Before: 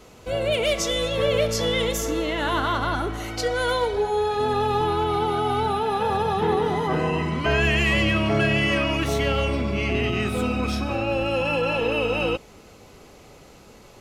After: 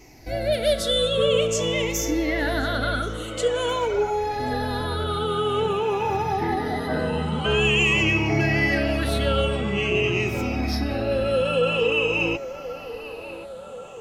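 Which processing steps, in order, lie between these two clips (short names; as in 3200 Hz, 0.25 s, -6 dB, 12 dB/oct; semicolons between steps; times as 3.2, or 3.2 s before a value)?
moving spectral ripple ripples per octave 0.73, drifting -0.48 Hz, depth 16 dB; bell 960 Hz -6 dB 1 oct; narrowing echo 1.081 s, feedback 70%, band-pass 820 Hz, level -10.5 dB; gain -2 dB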